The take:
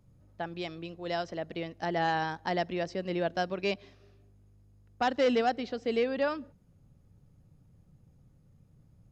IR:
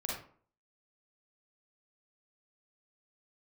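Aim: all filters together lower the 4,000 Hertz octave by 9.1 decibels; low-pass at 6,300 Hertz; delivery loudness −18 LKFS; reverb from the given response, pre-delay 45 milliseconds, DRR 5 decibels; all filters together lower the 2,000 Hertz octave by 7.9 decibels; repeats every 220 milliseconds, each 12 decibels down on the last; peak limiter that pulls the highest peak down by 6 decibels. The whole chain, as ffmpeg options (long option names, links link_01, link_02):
-filter_complex "[0:a]lowpass=6300,equalizer=frequency=2000:width_type=o:gain=-8.5,equalizer=frequency=4000:width_type=o:gain=-8.5,alimiter=level_in=1dB:limit=-24dB:level=0:latency=1,volume=-1dB,aecho=1:1:220|440|660:0.251|0.0628|0.0157,asplit=2[link_01][link_02];[1:a]atrim=start_sample=2205,adelay=45[link_03];[link_02][link_03]afir=irnorm=-1:irlink=0,volume=-8dB[link_04];[link_01][link_04]amix=inputs=2:normalize=0,volume=16.5dB"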